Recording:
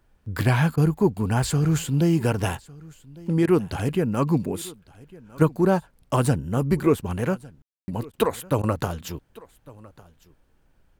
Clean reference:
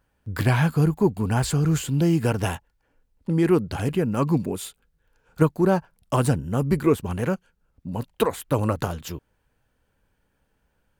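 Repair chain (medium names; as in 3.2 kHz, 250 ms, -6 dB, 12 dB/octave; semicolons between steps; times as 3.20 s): room tone fill 7.62–7.88 s; interpolate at 0.76/3.46/8.12/8.62 s, 13 ms; expander -52 dBFS, range -21 dB; inverse comb 1154 ms -22.5 dB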